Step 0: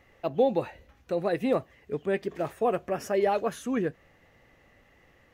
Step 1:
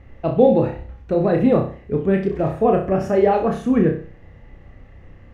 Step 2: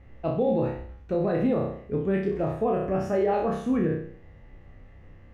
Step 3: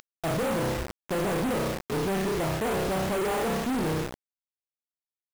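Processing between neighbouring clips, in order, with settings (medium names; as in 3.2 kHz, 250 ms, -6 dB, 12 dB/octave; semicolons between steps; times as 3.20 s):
RIAA curve playback; flutter echo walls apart 5.4 m, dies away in 0.42 s; trim +5 dB
spectral sustain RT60 0.56 s; peak limiter -8.5 dBFS, peak gain reduction 7.5 dB; trim -7.5 dB
one-bit delta coder 16 kbps, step -36.5 dBFS; companded quantiser 2-bit; trim -1.5 dB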